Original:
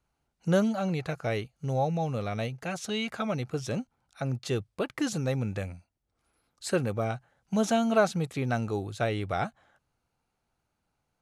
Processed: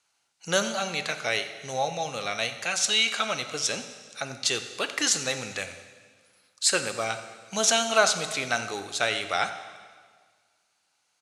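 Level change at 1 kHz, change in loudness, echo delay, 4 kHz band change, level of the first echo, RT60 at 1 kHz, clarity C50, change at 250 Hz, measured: +3.5 dB, +4.0 dB, 89 ms, +14.5 dB, -17.0 dB, 1.7 s, 9.5 dB, -8.5 dB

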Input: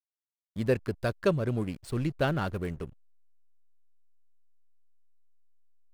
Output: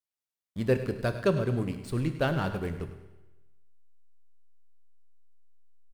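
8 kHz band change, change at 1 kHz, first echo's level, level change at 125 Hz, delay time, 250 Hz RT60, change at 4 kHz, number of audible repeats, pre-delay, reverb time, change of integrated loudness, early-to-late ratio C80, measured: +0.5 dB, +0.5 dB, -13.5 dB, +1.0 dB, 0.102 s, 1.1 s, +0.5 dB, 2, 16 ms, 1.1 s, +0.5 dB, 10.0 dB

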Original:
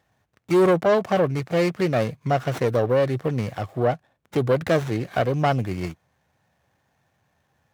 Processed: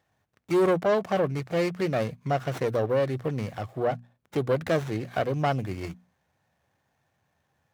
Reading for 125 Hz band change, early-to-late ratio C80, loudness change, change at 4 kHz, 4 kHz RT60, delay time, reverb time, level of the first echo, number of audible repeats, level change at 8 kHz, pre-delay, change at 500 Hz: -5.5 dB, none, -4.5 dB, -4.5 dB, none, none, none, none, none, n/a, none, -4.5 dB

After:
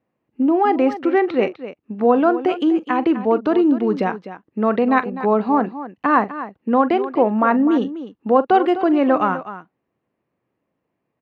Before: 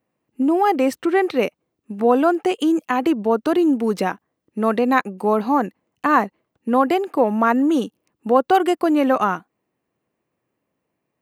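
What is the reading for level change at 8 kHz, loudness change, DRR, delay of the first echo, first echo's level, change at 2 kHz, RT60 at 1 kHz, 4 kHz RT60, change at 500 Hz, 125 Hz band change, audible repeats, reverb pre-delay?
n/a, +1.0 dB, none, 42 ms, -16.0 dB, -0.5 dB, none, none, +1.0 dB, n/a, 2, none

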